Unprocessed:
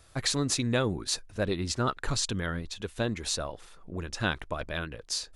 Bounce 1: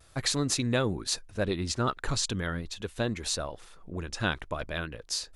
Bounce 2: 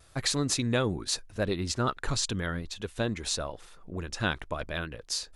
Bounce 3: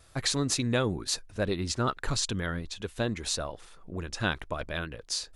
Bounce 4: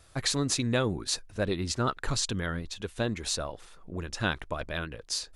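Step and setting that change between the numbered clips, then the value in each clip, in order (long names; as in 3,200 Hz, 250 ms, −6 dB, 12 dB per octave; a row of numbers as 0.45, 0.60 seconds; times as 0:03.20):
pitch vibrato, speed: 0.42, 0.85, 2.1, 7 Hertz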